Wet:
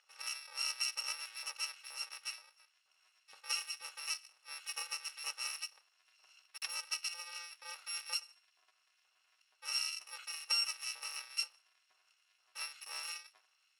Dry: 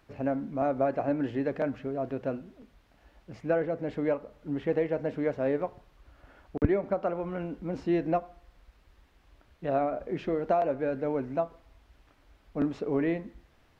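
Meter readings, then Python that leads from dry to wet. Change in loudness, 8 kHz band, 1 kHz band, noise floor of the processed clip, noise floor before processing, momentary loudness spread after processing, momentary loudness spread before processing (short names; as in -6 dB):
-8.5 dB, n/a, -17.0 dB, -76 dBFS, -63 dBFS, 11 LU, 8 LU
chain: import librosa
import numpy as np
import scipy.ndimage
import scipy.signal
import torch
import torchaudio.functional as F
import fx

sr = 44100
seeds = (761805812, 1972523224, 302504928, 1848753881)

y = fx.bit_reversed(x, sr, seeds[0], block=128)
y = fx.bandpass_edges(y, sr, low_hz=610.0, high_hz=4400.0)
y = fx.filter_lfo_highpass(y, sr, shape='saw_up', hz=2.1, low_hz=800.0, high_hz=2100.0, q=0.85)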